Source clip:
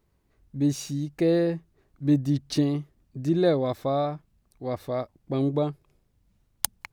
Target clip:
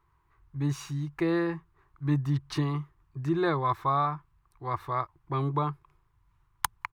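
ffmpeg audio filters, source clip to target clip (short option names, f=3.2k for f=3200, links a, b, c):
-af "firequalizer=gain_entry='entry(150,0);entry(210,-21);entry(340,-2);entry(560,-14);entry(1000,14);entry(1500,6);entry(2700,-1);entry(4700,-8)':delay=0.05:min_phase=1"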